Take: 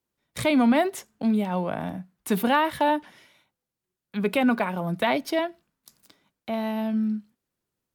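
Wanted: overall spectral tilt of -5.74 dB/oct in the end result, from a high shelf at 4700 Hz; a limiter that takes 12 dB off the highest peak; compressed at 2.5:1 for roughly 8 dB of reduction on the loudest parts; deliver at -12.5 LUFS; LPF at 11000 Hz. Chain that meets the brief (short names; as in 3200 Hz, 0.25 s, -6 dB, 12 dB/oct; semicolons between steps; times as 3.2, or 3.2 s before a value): LPF 11000 Hz; high shelf 4700 Hz -6.5 dB; compressor 2.5:1, threshold -29 dBFS; gain +24.5 dB; limiter -4 dBFS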